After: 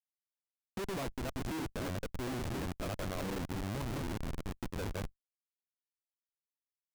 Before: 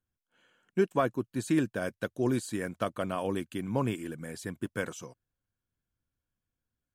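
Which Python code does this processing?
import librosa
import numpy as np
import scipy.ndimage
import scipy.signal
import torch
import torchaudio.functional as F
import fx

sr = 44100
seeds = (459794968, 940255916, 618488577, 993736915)

y = fx.reverse_delay(x, sr, ms=144, wet_db=-4)
y = fx.schmitt(y, sr, flips_db=-32.0)
y = fx.level_steps(y, sr, step_db=12)
y = y * 10.0 ** (-1.0 / 20.0)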